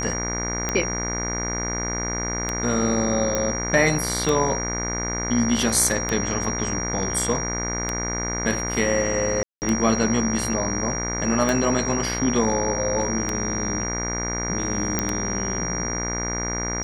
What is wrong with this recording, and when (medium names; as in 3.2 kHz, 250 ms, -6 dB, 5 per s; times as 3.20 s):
buzz 60 Hz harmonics 39 -29 dBFS
tick 33 1/3 rpm -9 dBFS
whine 5.7 kHz -28 dBFS
3.35 s: pop -9 dBFS
9.43–9.62 s: dropout 189 ms
14.99 s: pop -6 dBFS